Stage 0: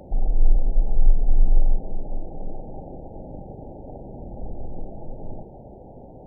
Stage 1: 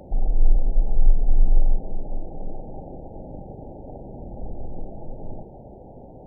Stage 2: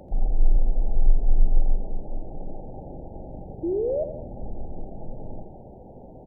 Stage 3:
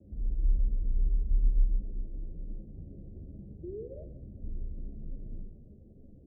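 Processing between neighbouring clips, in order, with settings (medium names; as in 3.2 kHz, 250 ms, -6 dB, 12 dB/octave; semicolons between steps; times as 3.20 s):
no audible change
painted sound rise, 3.63–4.04 s, 320–650 Hz -23 dBFS; on a send: feedback delay 85 ms, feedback 52%, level -10 dB; on the sum: trim -2 dB
frequency shift +14 Hz; Gaussian low-pass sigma 24 samples; chorus voices 4, 1.2 Hz, delay 12 ms, depth 3 ms; trim -3 dB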